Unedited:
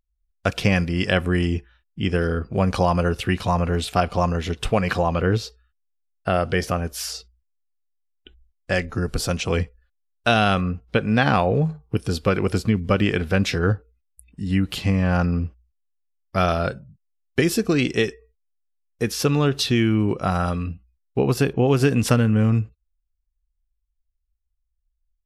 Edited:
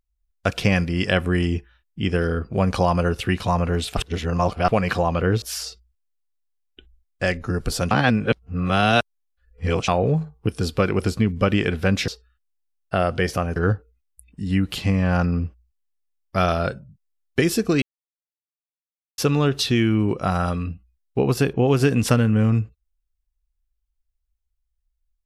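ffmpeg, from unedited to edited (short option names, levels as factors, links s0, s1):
-filter_complex "[0:a]asplit=10[s0][s1][s2][s3][s4][s5][s6][s7][s8][s9];[s0]atrim=end=3.972[s10];[s1]atrim=start=3.968:end=4.682,asetpts=PTS-STARTPTS,areverse[s11];[s2]atrim=start=4.678:end=5.422[s12];[s3]atrim=start=6.898:end=9.392[s13];[s4]atrim=start=9.388:end=11.362,asetpts=PTS-STARTPTS,areverse[s14];[s5]atrim=start=11.358:end=13.562[s15];[s6]atrim=start=5.418:end=6.902[s16];[s7]atrim=start=13.558:end=17.82,asetpts=PTS-STARTPTS,afade=t=out:st=4.258:d=0.004:c=hsin[s17];[s8]atrim=start=17.82:end=19.18,asetpts=PTS-STARTPTS,volume=0[s18];[s9]atrim=start=19.18,asetpts=PTS-STARTPTS,afade=t=in:d=0.004:c=hsin[s19];[s10][s11]acrossfade=d=0.004:c1=hsin:c2=hsin[s20];[s20][s12]acrossfade=d=0.004:c1=hsin:c2=hsin[s21];[s21][s13]acrossfade=d=0.004:c1=hsin:c2=hsin[s22];[s22][s14]acrossfade=d=0.004:c1=hsin:c2=hsin[s23];[s23][s15]acrossfade=d=0.004:c1=hsin:c2=hsin[s24];[s24][s16]acrossfade=d=0.004:c1=hsin:c2=hsin[s25];[s17][s18][s19]concat=n=3:v=0:a=1[s26];[s25][s26]acrossfade=d=0.004:c1=hsin:c2=hsin"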